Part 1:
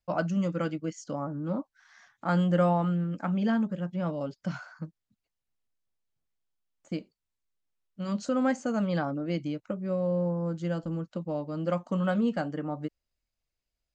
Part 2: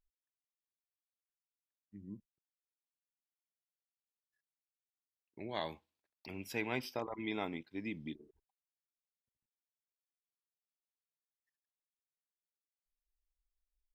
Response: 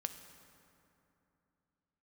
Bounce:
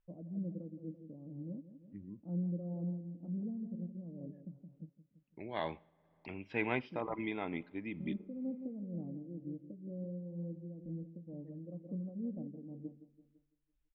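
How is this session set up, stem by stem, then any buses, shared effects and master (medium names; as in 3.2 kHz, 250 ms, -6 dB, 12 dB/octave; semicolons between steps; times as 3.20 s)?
-10.0 dB, 0.00 s, no send, echo send -9.5 dB, inverse Chebyshev low-pass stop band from 1.9 kHz, stop band 70 dB
+3.0 dB, 0.00 s, send -15.5 dB, no echo send, low-pass 3 kHz 24 dB/octave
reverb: on, RT60 2.9 s, pre-delay 3 ms
echo: feedback delay 168 ms, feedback 42%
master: tremolo 2.1 Hz, depth 48%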